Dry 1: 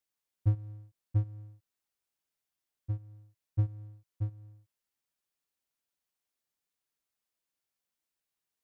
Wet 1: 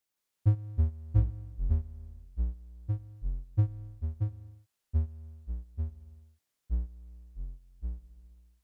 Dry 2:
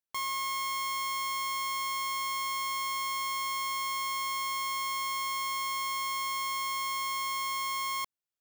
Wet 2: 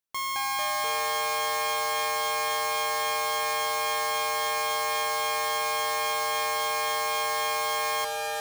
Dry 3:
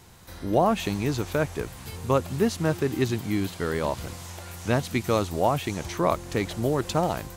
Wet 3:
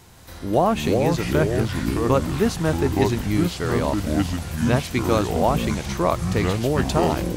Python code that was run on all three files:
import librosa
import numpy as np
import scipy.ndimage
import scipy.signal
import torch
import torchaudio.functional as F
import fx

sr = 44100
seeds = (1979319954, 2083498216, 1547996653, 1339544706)

y = fx.echo_pitch(x, sr, ms=165, semitones=-5, count=3, db_per_echo=-3.0)
y = y * 10.0 ** (2.5 / 20.0)